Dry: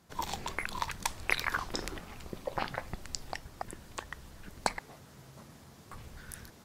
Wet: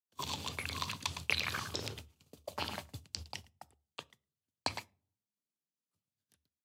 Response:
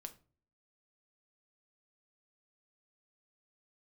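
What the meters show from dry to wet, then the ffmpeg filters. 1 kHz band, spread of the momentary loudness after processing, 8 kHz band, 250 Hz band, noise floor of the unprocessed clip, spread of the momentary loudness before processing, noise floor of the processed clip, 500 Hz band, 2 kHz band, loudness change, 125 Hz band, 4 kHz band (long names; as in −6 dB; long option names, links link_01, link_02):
−6.5 dB, 17 LU, −3.5 dB, −4.5 dB, −56 dBFS, 21 LU, below −85 dBFS, −6.0 dB, −4.5 dB, −1.5 dB, −1.0 dB, +2.0 dB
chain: -filter_complex "[0:a]asplit=2[link_01][link_02];[link_02]adelay=110,highpass=300,lowpass=3400,asoftclip=type=hard:threshold=-17dB,volume=-7dB[link_03];[link_01][link_03]amix=inputs=2:normalize=0,aexciter=amount=8.5:drive=4.1:freq=2700,equalizer=frequency=1200:width=0.37:gain=-3.5,acrossover=split=4400[link_04][link_05];[link_05]acompressor=threshold=-35dB:ratio=4:attack=1:release=60[link_06];[link_04][link_06]amix=inputs=2:normalize=0,agate=range=-48dB:threshold=-35dB:ratio=16:detection=peak,asplit=2[link_07][link_08];[link_08]asuperstop=centerf=4400:order=20:qfactor=7.1[link_09];[1:a]atrim=start_sample=2205[link_10];[link_09][link_10]afir=irnorm=-1:irlink=0,volume=-4.5dB[link_11];[link_07][link_11]amix=inputs=2:normalize=0,afreqshift=71,highshelf=frequency=4600:gain=-10.5,volume=-5dB"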